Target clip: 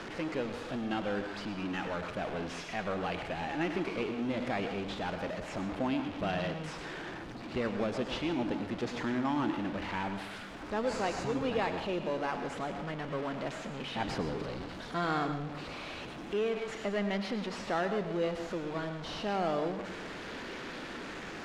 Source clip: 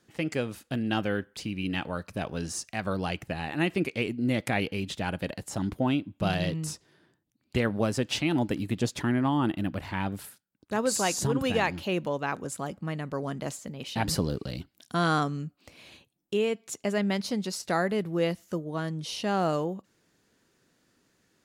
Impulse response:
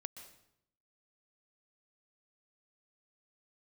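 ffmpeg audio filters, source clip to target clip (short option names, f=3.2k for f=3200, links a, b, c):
-filter_complex "[0:a]aeval=exprs='val(0)+0.5*0.0447*sgn(val(0))':c=same,equalizer=f=110:w=0.84:g=-10.5,asplit=2[a][b];[b]acrusher=samples=10:mix=1:aa=0.000001:lfo=1:lforange=10:lforate=0.28,volume=-3.5dB[c];[a][c]amix=inputs=2:normalize=0,lowpass=3.6k[d];[1:a]atrim=start_sample=2205,asetrate=52920,aresample=44100[e];[d][e]afir=irnorm=-1:irlink=0,volume=-4.5dB"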